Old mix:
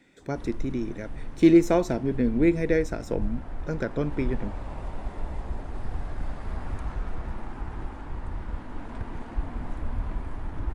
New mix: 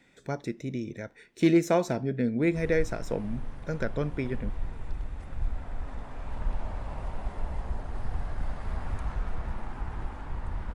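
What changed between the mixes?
background: entry +2.20 s; master: add bell 310 Hz -6 dB 0.82 oct

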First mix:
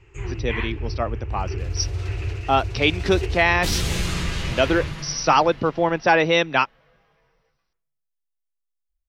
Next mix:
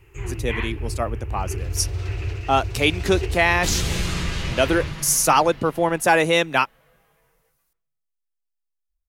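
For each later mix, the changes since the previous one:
speech: remove brick-wall FIR low-pass 6000 Hz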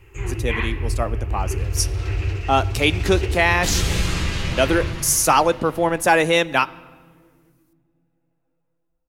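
reverb: on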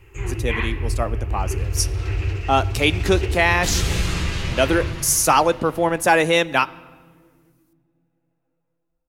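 second sound: send -10.0 dB

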